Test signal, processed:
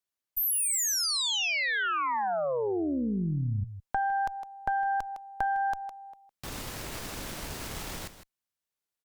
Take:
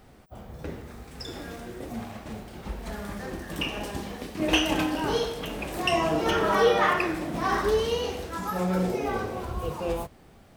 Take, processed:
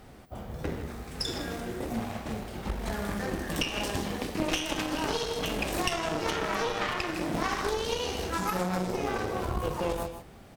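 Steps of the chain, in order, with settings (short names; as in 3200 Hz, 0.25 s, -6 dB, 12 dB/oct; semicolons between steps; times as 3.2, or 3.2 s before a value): dynamic EQ 5600 Hz, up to +6 dB, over -46 dBFS, Q 0.74; echo 0.158 s -13 dB; added harmonics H 4 -9 dB, 8 -25 dB, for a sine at -5.5 dBFS; compressor 16:1, threshold -28 dBFS; gain +3 dB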